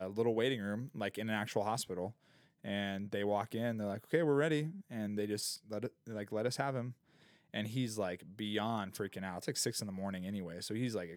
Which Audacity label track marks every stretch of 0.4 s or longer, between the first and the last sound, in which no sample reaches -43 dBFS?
2.100000	2.650000	silence
6.910000	7.540000	silence